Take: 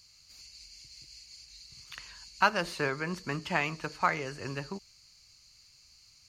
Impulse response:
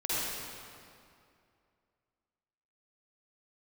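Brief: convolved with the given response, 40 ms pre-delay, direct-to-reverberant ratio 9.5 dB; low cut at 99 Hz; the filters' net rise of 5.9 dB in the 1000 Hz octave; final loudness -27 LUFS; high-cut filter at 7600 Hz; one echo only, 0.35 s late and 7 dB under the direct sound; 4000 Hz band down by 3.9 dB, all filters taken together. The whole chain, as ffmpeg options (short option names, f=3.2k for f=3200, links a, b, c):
-filter_complex "[0:a]highpass=99,lowpass=7.6k,equalizer=f=1k:t=o:g=7.5,equalizer=f=4k:t=o:g=-5.5,aecho=1:1:350:0.447,asplit=2[a][b];[1:a]atrim=start_sample=2205,adelay=40[c];[b][c]afir=irnorm=-1:irlink=0,volume=-18dB[d];[a][d]amix=inputs=2:normalize=0,volume=0.5dB"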